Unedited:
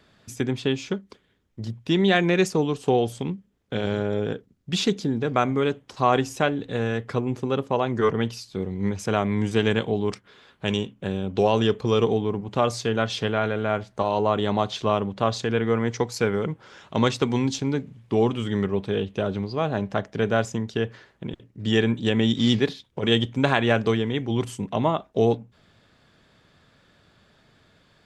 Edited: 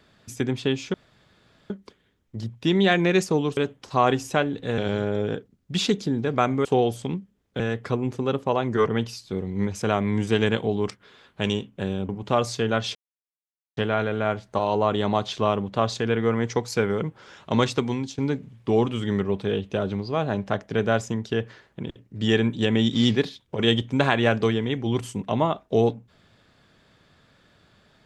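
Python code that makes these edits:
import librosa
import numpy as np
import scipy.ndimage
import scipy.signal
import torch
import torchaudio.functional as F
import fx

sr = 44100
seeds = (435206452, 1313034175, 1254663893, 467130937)

y = fx.edit(x, sr, fx.insert_room_tone(at_s=0.94, length_s=0.76),
    fx.swap(start_s=2.81, length_s=0.95, other_s=5.63, other_length_s=1.21),
    fx.cut(start_s=11.33, length_s=1.02),
    fx.insert_silence(at_s=13.21, length_s=0.82),
    fx.fade_out_to(start_s=17.16, length_s=0.46, floor_db=-11.5), tone=tone)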